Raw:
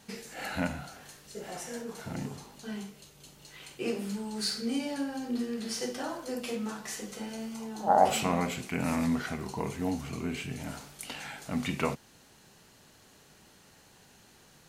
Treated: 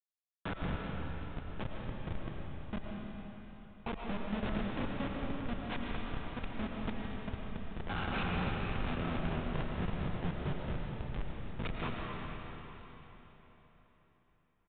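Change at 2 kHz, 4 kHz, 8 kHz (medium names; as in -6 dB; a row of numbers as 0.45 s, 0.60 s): -3.5 dB, -8.5 dB, under -40 dB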